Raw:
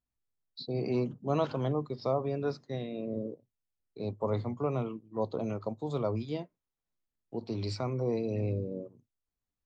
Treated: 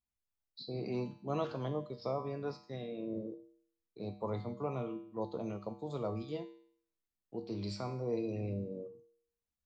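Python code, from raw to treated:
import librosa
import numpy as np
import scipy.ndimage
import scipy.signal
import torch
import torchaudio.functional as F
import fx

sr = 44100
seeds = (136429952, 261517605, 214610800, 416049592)

y = fx.comb_fb(x, sr, f0_hz=67.0, decay_s=0.59, harmonics='odd', damping=0.0, mix_pct=80)
y = y * librosa.db_to_amplitude(5.5)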